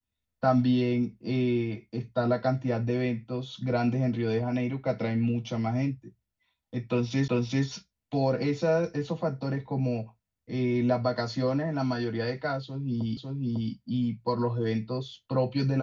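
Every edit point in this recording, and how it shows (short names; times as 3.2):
7.28 repeat of the last 0.39 s
13.17 repeat of the last 0.55 s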